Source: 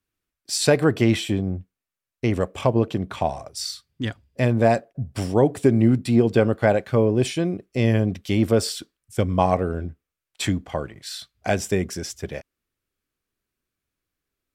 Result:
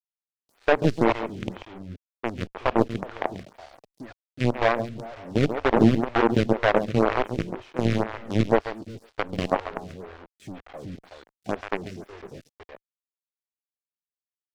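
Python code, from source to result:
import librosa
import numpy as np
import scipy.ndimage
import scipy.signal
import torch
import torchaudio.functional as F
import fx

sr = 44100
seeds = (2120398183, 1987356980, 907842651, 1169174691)

p1 = fx.highpass(x, sr, hz=100.0, slope=6)
p2 = fx.peak_eq(p1, sr, hz=1000.0, db=-3.5, octaves=0.35)
p3 = p2 + 10.0 ** (-7.0 / 20.0) * np.pad(p2, (int(372 * sr / 1000.0), 0))[:len(p2)]
p4 = fx.quant_companded(p3, sr, bits=2)
p5 = scipy.signal.sosfilt(scipy.signal.butter(2, 3200.0, 'lowpass', fs=sr, output='sos'), p4)
p6 = fx.tilt_shelf(p5, sr, db=3.0, hz=1400.0)
p7 = p6 + fx.echo_single(p6, sr, ms=138, db=-10.0, dry=0)
p8 = np.sign(p7) * np.maximum(np.abs(p7) - 10.0 ** (-31.5 / 20.0), 0.0)
p9 = fx.stagger_phaser(p8, sr, hz=2.0)
y = p9 * 10.0 ** (-8.0 / 20.0)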